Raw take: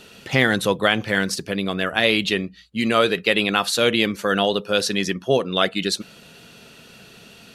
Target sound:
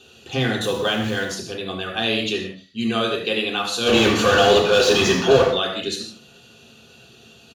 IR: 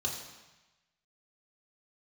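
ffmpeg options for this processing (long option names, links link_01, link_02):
-filter_complex "[0:a]asettb=1/sr,asplit=3[link_01][link_02][link_03];[link_01]atrim=end=0.614[link_04];[link_02]atrim=start=0.61:end=1.23,asetpts=PTS-STARTPTS,afade=type=in:duration=0.004:curve=qsin,afade=type=out:start_time=0.616:duration=0.004:curve=qsin,aeval=exprs='val(0)+0.5*0.0422*sgn(val(0))':channel_layout=same[link_05];[link_03]atrim=start=1.226[link_06];[link_04][link_05]acrossfade=duration=0.004:curve1=hsin:curve2=qsin[link_07];[link_07][link_06]acrossfade=duration=0.004:curve1=qsin:curve2=hsin,asplit=3[link_08][link_09][link_10];[link_08]afade=type=out:start_time=3.85:duration=0.02[link_11];[link_09]asplit=2[link_12][link_13];[link_13]highpass=frequency=720:poles=1,volume=35dB,asoftclip=type=tanh:threshold=-3.5dB[link_14];[link_12][link_14]amix=inputs=2:normalize=0,lowpass=frequency=2000:poles=1,volume=-6dB,afade=type=in:start_time=3.85:duration=0.02,afade=type=out:start_time=5.43:duration=0.02[link_15];[link_10]afade=type=in:start_time=5.43:duration=0.02[link_16];[link_11][link_15][link_16]amix=inputs=3:normalize=0,aecho=1:1:73:0.211[link_17];[1:a]atrim=start_sample=2205,afade=type=out:start_time=0.23:duration=0.01,atrim=end_sample=10584[link_18];[link_17][link_18]afir=irnorm=-1:irlink=0,volume=-8.5dB"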